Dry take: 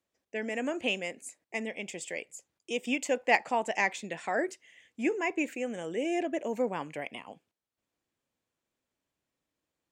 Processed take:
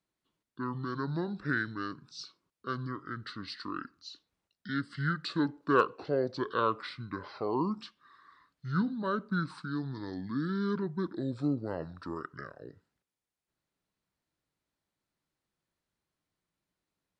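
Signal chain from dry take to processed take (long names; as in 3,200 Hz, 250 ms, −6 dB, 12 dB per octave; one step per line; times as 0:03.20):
wrong playback speed 78 rpm record played at 45 rpm
level −1.5 dB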